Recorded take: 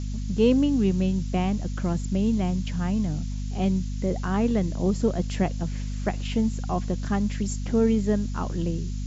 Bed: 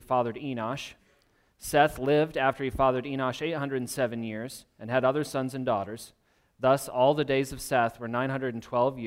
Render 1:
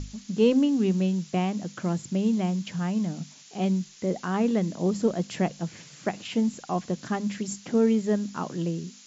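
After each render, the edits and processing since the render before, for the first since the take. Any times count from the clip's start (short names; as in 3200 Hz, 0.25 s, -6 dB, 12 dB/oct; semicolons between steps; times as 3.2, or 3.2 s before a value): notches 50/100/150/200/250 Hz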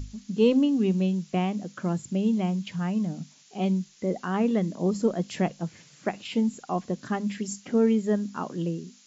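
noise print and reduce 6 dB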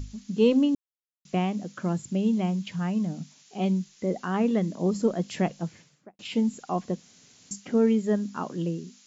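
0.75–1.25 mute; 5.66–6.19 studio fade out; 7–7.51 room tone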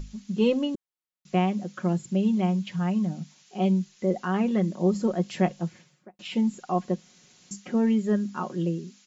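tone controls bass -2 dB, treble -4 dB; comb 5.5 ms, depth 56%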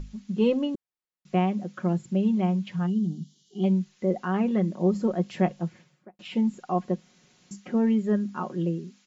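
2.86–3.64 spectral gain 470–2800 Hz -22 dB; high shelf 4100 Hz -10 dB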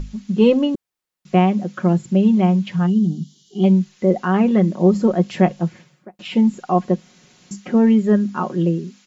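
gain +9 dB; limiter -3 dBFS, peak gain reduction 1 dB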